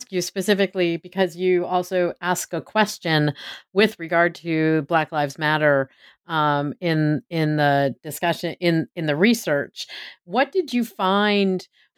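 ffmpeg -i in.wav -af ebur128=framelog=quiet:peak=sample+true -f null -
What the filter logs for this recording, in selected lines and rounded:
Integrated loudness:
  I:         -21.5 LUFS
  Threshold: -31.8 LUFS
Loudness range:
  LRA:         1.3 LU
  Threshold: -41.7 LUFS
  LRA low:   -22.3 LUFS
  LRA high:  -21.0 LUFS
Sample peak:
  Peak:       -2.8 dBFS
True peak:
  Peak:       -2.7 dBFS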